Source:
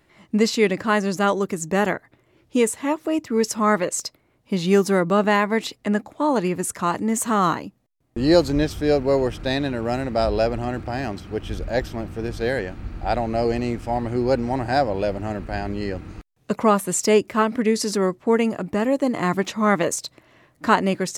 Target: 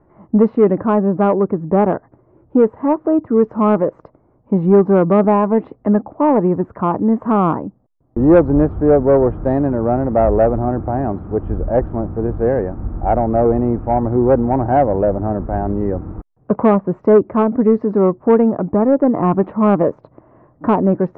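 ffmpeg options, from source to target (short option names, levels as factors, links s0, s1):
-filter_complex "[0:a]lowpass=f=1100:w=0.5412,lowpass=f=1100:w=1.3066,acrossover=split=690[s0][s1];[s1]alimiter=limit=0.106:level=0:latency=1:release=283[s2];[s0][s2]amix=inputs=2:normalize=0,asoftclip=type=tanh:threshold=0.282,volume=2.66"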